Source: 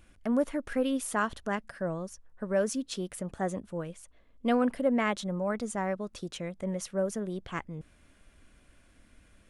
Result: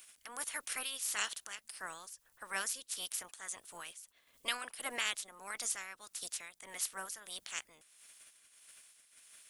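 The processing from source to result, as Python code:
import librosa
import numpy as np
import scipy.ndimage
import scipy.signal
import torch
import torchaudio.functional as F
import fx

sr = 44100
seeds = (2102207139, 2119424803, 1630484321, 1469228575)

y = fx.spec_clip(x, sr, under_db=25)
y = F.preemphasis(torch.from_numpy(y), 0.97).numpy()
y = y * (1.0 - 0.63 / 2.0 + 0.63 / 2.0 * np.cos(2.0 * np.pi * 1.6 * (np.arange(len(y)) / sr)))
y = y * librosa.db_to_amplitude(5.0)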